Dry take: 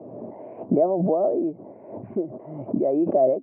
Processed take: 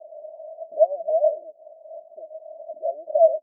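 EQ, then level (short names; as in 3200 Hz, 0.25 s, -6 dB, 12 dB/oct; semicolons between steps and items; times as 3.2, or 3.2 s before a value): Butterworth band-pass 640 Hz, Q 7.6; +5.0 dB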